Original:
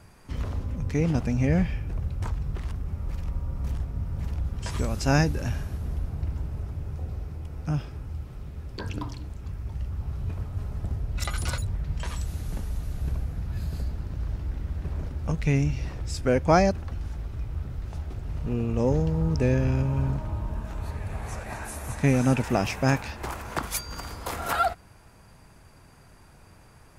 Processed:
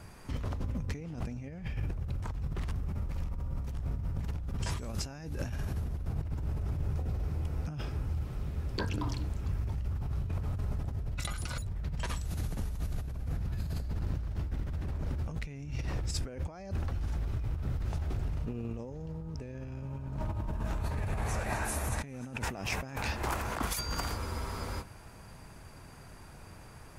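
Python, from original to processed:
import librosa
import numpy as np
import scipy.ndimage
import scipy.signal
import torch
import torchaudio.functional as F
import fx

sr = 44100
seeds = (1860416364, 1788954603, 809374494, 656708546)

y = fx.over_compress(x, sr, threshold_db=-33.0, ratio=-1.0)
y = fx.spec_freeze(y, sr, seeds[0], at_s=24.2, hold_s=0.61)
y = F.gain(torch.from_numpy(y), -2.0).numpy()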